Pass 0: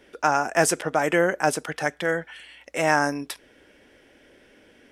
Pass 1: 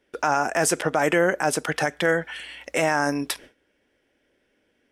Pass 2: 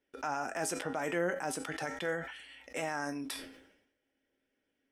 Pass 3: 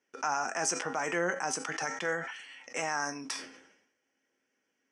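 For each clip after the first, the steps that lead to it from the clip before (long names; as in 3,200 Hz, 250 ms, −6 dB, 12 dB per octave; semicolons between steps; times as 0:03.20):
noise gate with hold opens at −42 dBFS; in parallel at +2 dB: downward compressor, threshold −28 dBFS, peak gain reduction 13.5 dB; on the sum: brickwall limiter −9.5 dBFS, peak gain reduction 7 dB
flanger 0.42 Hz, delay 6.8 ms, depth 4.9 ms, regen +80%; tuned comb filter 270 Hz, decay 0.26 s, harmonics odd, mix 70%; level that may fall only so fast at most 69 dB per second
loudspeaker in its box 200–8,200 Hz, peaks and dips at 290 Hz −7 dB, 410 Hz −3 dB, 590 Hz −6 dB, 1,100 Hz +4 dB, 3,700 Hz −9 dB, 6,000 Hz +10 dB; level +4.5 dB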